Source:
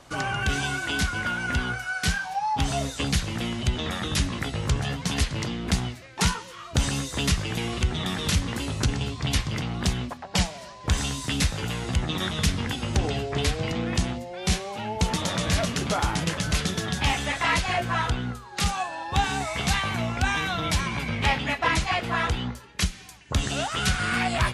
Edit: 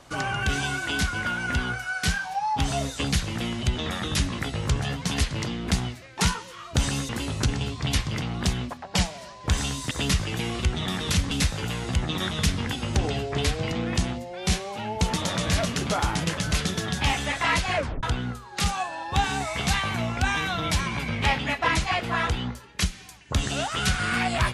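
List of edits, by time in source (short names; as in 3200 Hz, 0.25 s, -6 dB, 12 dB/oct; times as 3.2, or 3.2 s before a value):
7.09–8.49 move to 11.31
17.76 tape stop 0.27 s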